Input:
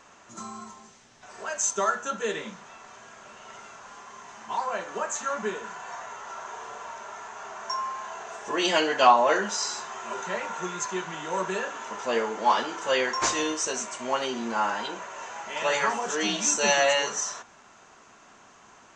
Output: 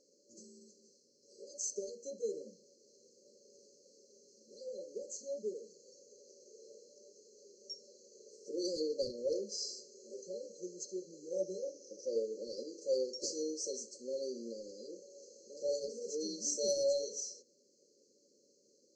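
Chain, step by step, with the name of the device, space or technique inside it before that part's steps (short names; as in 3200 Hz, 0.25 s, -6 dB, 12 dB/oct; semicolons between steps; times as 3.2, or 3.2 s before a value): intercom (BPF 420–4500 Hz; bell 1800 Hz +10 dB 0.49 oct; soft clip -8 dBFS, distortion -23 dB); FFT band-reject 590–4100 Hz; 11.35–12.16 ripple EQ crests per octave 1.2, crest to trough 11 dB; gain -4.5 dB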